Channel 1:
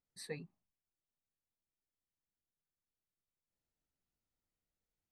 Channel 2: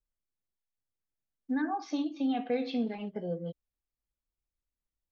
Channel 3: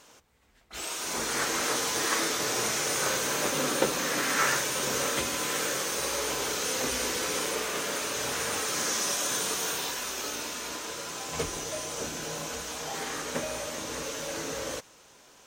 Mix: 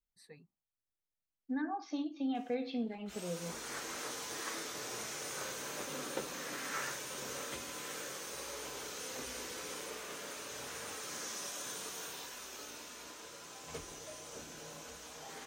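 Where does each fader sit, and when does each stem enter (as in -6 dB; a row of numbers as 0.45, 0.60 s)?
-12.0, -5.5, -13.5 dB; 0.00, 0.00, 2.35 s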